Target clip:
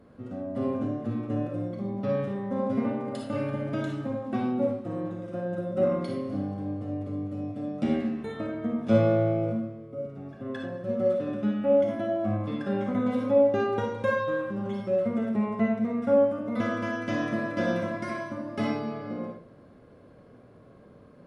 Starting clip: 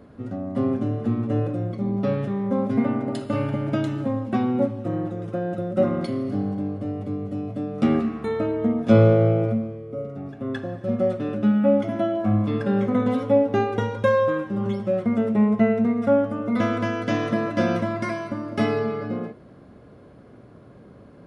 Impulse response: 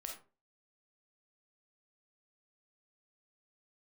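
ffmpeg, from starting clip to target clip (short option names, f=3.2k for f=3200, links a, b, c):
-filter_complex "[0:a]asettb=1/sr,asplit=3[a][b][c];[a]atrim=end=7.824[d];[b]atrim=start=7.82:end=8.29,asetpts=PTS-STARTPTS,afade=t=in:d=0.004:c=qsin,afade=t=out:st=0.466:d=0.004:c=qsin,equalizer=f=1.2k:t=o:w=0.24:g=-14.5[e];[c]atrim=start=8.286[f];[d][e]acrossfade=d=0.004:c1=hsin:c2=qsin[g];[g][f]acrossfade=d=0.004:c1=qsin:c2=hsin[h];[1:a]atrim=start_sample=2205,asetrate=36603,aresample=44100[i];[h][i]afir=irnorm=-1:irlink=0,volume=-3dB"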